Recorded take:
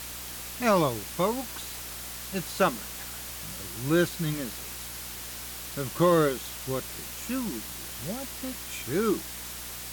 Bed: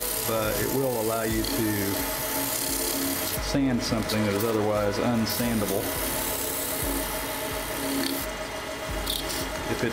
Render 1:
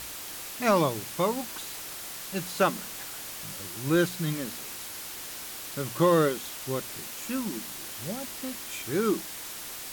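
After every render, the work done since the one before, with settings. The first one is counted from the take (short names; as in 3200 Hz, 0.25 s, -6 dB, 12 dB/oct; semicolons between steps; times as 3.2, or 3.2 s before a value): de-hum 60 Hz, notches 4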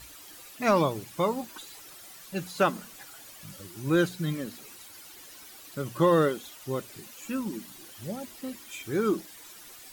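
denoiser 12 dB, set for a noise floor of -40 dBFS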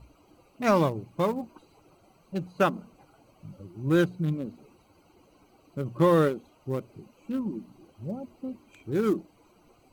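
Wiener smoothing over 25 samples; bell 110 Hz +3.5 dB 2.6 oct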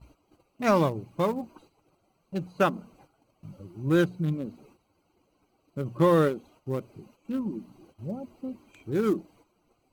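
gate -56 dBFS, range -10 dB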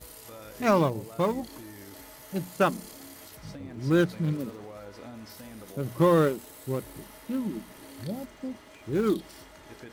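add bed -19 dB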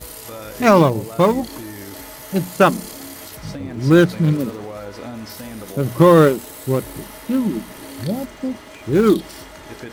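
gain +11.5 dB; limiter -2 dBFS, peak gain reduction 2.5 dB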